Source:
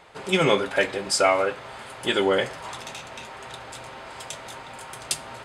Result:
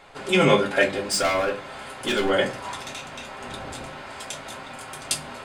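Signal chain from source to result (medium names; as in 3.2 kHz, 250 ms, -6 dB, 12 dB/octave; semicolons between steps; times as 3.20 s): 0.86–2.30 s: overload inside the chain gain 21.5 dB; 3.41–3.85 s: bass shelf 450 Hz +8 dB; reverberation, pre-delay 3 ms, DRR 2 dB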